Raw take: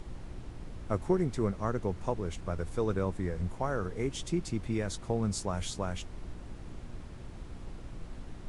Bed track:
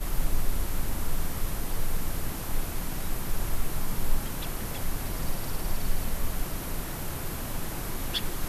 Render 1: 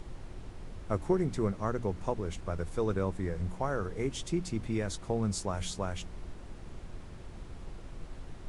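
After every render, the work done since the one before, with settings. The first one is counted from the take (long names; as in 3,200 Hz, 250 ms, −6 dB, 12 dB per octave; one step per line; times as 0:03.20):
hum removal 60 Hz, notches 5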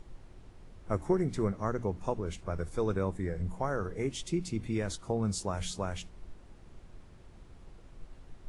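noise reduction from a noise print 8 dB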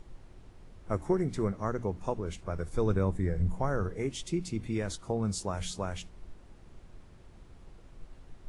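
0:02.73–0:03.89: low-shelf EQ 190 Hz +7.5 dB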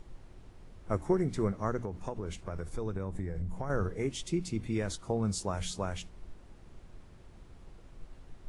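0:01.79–0:03.70: downward compressor, threshold −31 dBFS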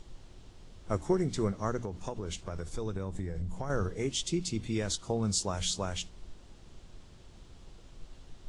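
flat-topped bell 4,800 Hz +8 dB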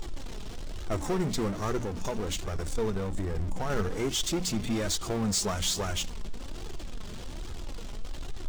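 power curve on the samples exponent 0.5
flanger 1.2 Hz, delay 2.3 ms, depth 2.7 ms, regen +41%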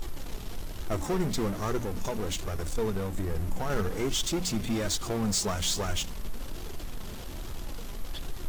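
mix in bed track −13.5 dB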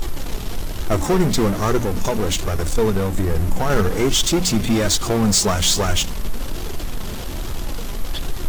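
level +11.5 dB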